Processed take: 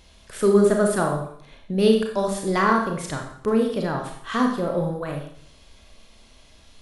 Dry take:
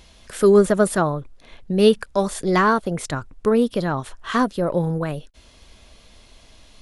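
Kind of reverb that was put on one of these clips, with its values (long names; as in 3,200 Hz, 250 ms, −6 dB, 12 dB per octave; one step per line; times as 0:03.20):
four-comb reverb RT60 0.63 s, combs from 28 ms, DRR 1.5 dB
level −4.5 dB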